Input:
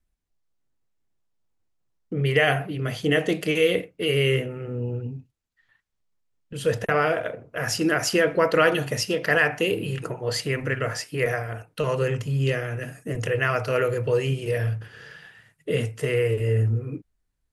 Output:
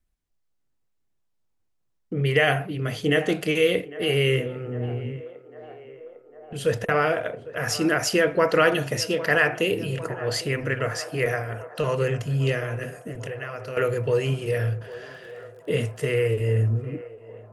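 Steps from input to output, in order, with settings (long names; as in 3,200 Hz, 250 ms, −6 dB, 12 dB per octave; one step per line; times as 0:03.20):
0:13.03–0:13.77: downward compressor 6 to 1, threshold −32 dBFS, peak gain reduction 13 dB
feedback echo with a band-pass in the loop 802 ms, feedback 80%, band-pass 730 Hz, level −15 dB
0:14.78–0:16.12: surface crackle 26 per second → 92 per second −44 dBFS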